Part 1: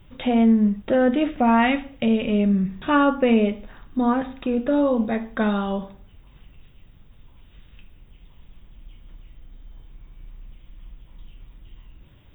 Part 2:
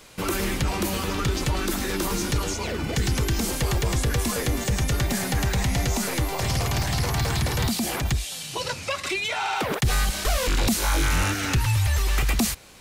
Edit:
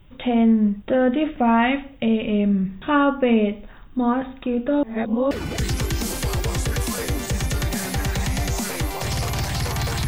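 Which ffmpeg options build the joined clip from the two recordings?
-filter_complex "[0:a]apad=whole_dur=10.07,atrim=end=10.07,asplit=2[a][b];[a]atrim=end=4.832[c];[b]atrim=start=4.828:end=5.312,asetpts=PTS-STARTPTS,areverse[d];[1:a]atrim=start=2.688:end=7.45[e];[c][d]acrossfade=d=0.004:c1=hsin:c2=hsin[f];[f][e]acrossfade=d=0.004:c1=hsin:c2=hsin"

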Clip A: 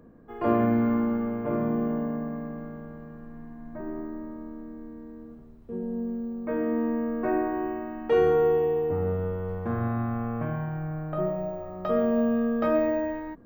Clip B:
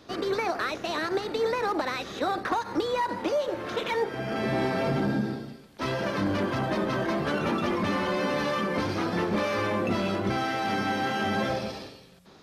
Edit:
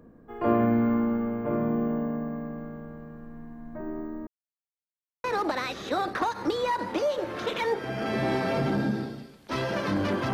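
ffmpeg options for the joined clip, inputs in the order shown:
-filter_complex "[0:a]apad=whole_dur=10.33,atrim=end=10.33,asplit=2[a][b];[a]atrim=end=4.27,asetpts=PTS-STARTPTS,afade=t=out:st=4.266:d=0.004:c=hsin[c];[b]atrim=start=4.27:end=5.24,asetpts=PTS-STARTPTS,volume=0[d];[1:a]atrim=start=1.54:end=6.63,asetpts=PTS-STARTPTS,afade=t=in:d=0.004:c=hsin[e];[c][d][e]concat=n=3:v=0:a=1"

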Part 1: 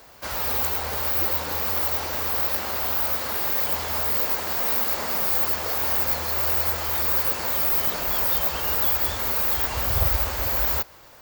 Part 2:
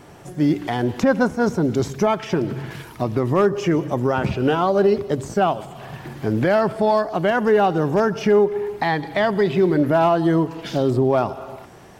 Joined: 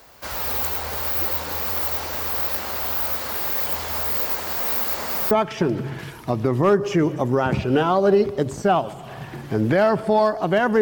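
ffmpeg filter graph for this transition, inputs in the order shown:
-filter_complex "[0:a]apad=whole_dur=10.81,atrim=end=10.81,atrim=end=5.312[a];[1:a]atrim=start=2.028:end=7.53[b];[a][b]acrossfade=d=0.004:c1=hsin:c2=hsin"

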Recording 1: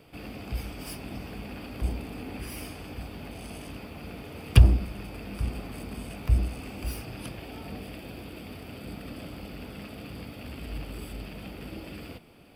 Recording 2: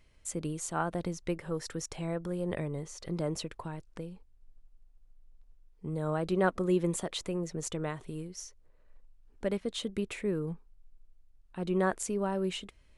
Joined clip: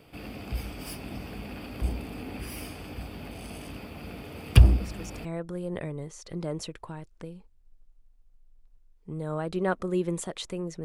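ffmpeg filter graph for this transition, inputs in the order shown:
-filter_complex "[1:a]asplit=2[a][b];[0:a]apad=whole_dur=10.84,atrim=end=10.84,atrim=end=5.252[c];[b]atrim=start=2.008:end=7.6[d];[a]atrim=start=1.56:end=2.01,asetpts=PTS-STARTPTS,volume=-6.5dB,afade=t=in:d=0.004:c=hsin,afade=t=out:st=0.446:d=0.004:c=hsin,adelay=4800[e];[c][d]acrossfade=d=0.004:c1=hsin:c2=hsin[f];[f][e]amix=inputs=2:normalize=0"

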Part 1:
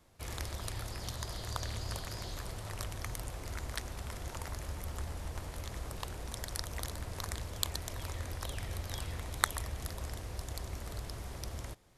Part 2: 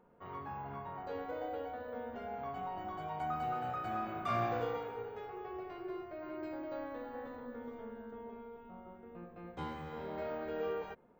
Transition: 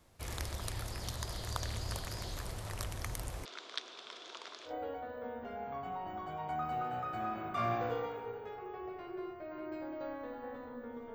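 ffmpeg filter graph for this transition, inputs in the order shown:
-filter_complex "[0:a]asettb=1/sr,asplit=3[a][b][c];[a]atrim=end=3.454[d];[b]atrim=start=3.45:end=4.74,asetpts=PTS-STARTPTS,afade=t=in:d=0.004:c=qsin,afade=t=out:st=1.286:d=0.004:c=qsin,highpass=f=380:w=0.5412,highpass=f=380:w=1.3066,equalizer=f=550:t=q:w=4:g=-8,equalizer=f=830:t=q:w=4:g=-9,equalizer=f=1.9k:t=q:w=4:g=-7,equalizer=f=3.5k:t=q:w=4:g=9,lowpass=f=5.4k:w=0.5412,lowpass=f=5.4k:w=1.3066[e];[c]atrim=start=4.736[f];[d][e]acrossfade=d=0.004:c1=hsin:c2=qsin[g];[g][f]acrossfade=d=0.004:c1=qsin:c2=hsin,apad=whole_dur=11.14,atrim=end=11.14,atrim=end=4.74,asetpts=PTS-STARTPTS[h];[1:a]atrim=start=1.35:end=7.85,asetpts=PTS-STARTPTS[i];[h][i]acrossfade=d=0.1:c1=tri:c2=tri"

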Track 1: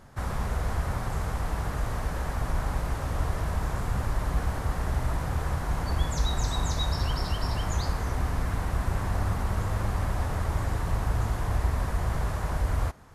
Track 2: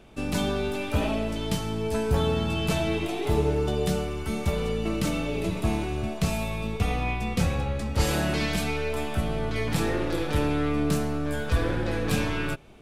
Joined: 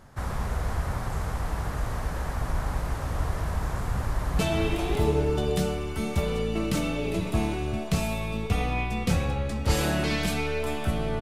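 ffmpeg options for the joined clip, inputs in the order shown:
-filter_complex "[0:a]apad=whole_dur=11.21,atrim=end=11.21,atrim=end=4.392[a];[1:a]atrim=start=2.688:end=9.51[b];[a][b]acrossfade=d=0.004:c1=hsin:c2=hsin,asplit=2[c][d];[d]afade=t=in:st=3.95:d=0.01,afade=t=out:st=4.39:d=0.01,aecho=0:1:560|1120|1680|2240|2800:0.707946|0.247781|0.0867234|0.0303532|0.0106236[e];[c][e]amix=inputs=2:normalize=0"

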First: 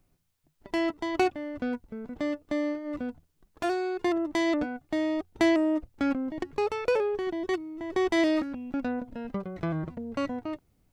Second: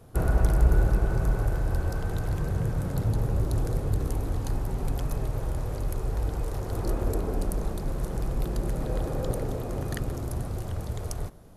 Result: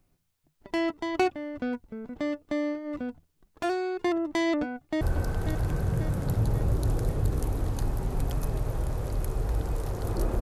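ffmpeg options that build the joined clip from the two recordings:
-filter_complex "[0:a]apad=whole_dur=10.41,atrim=end=10.41,atrim=end=5.012[a];[1:a]atrim=start=1.688:end=7.09[b];[a][b]acrossfade=d=0.004:c1=hsin:c2=hsin,asplit=2[c][d];[d]afade=t=in:st=4.61:d=0.01,afade=t=out:st=5.01:d=0.01,aecho=0:1:540|1080|1620|2160|2700|3240|3780|4320:0.398107|0.238864|0.143319|0.0859911|0.0515947|0.0309568|0.0185741|0.0111445[e];[c][e]amix=inputs=2:normalize=0"

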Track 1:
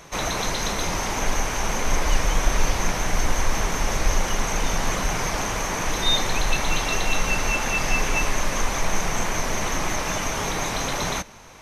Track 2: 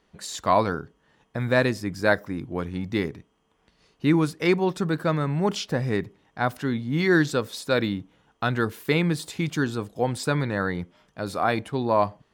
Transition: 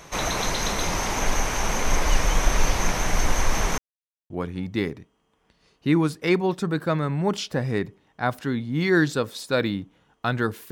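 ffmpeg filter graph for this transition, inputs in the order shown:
-filter_complex "[0:a]apad=whole_dur=10.71,atrim=end=10.71,asplit=2[a][b];[a]atrim=end=3.78,asetpts=PTS-STARTPTS,afade=t=out:st=3.776:d=0.004:c=hsin[c];[b]atrim=start=3.78:end=4.3,asetpts=PTS-STARTPTS,volume=0[d];[1:a]atrim=start=2.48:end=8.89,asetpts=PTS-STARTPTS,afade=t=in:d=0.004:c=hsin[e];[c][d][e]concat=n=3:v=0:a=1"

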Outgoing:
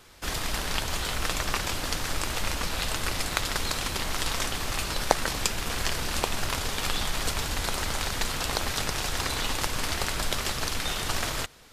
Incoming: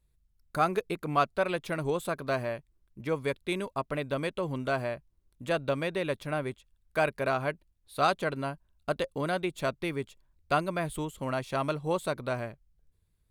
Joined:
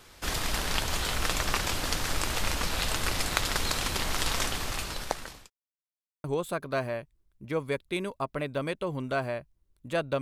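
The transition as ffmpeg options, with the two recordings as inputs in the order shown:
-filter_complex "[0:a]apad=whole_dur=10.21,atrim=end=10.21,asplit=2[a][b];[a]atrim=end=5.5,asetpts=PTS-STARTPTS,afade=t=out:st=4.41:d=1.09[c];[b]atrim=start=5.5:end=6.24,asetpts=PTS-STARTPTS,volume=0[d];[1:a]atrim=start=1.8:end=5.77,asetpts=PTS-STARTPTS,afade=t=in:d=0.004:c=hsin[e];[c][d][e]concat=n=3:v=0:a=1"

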